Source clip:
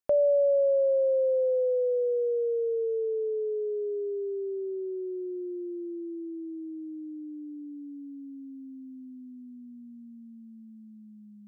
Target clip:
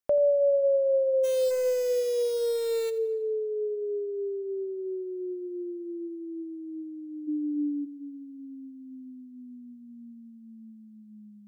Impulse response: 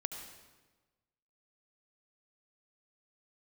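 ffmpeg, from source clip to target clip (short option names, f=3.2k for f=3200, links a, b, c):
-filter_complex "[0:a]asplit=3[a][b][c];[a]afade=t=out:st=1.23:d=0.02[d];[b]acrusher=bits=7:dc=4:mix=0:aa=0.000001,afade=t=in:st=1.23:d=0.02,afade=t=out:st=2.89:d=0.02[e];[c]afade=t=in:st=2.89:d=0.02[f];[d][e][f]amix=inputs=3:normalize=0,asplit=3[g][h][i];[g]afade=t=out:st=7.27:d=0.02[j];[h]equalizer=f=430:t=o:w=3:g=12.5,afade=t=in:st=7.27:d=0.02,afade=t=out:st=7.84:d=0.02[k];[i]afade=t=in:st=7.84:d=0.02[l];[j][k][l]amix=inputs=3:normalize=0,asplit=2[m][n];[1:a]atrim=start_sample=2205,adelay=85[o];[n][o]afir=irnorm=-1:irlink=0,volume=-15dB[p];[m][p]amix=inputs=2:normalize=0"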